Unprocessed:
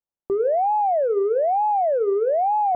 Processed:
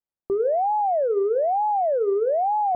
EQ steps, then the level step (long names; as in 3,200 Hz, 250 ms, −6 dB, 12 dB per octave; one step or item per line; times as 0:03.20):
low-pass filter 2,200 Hz 12 dB per octave
high-frequency loss of the air 440 metres
0.0 dB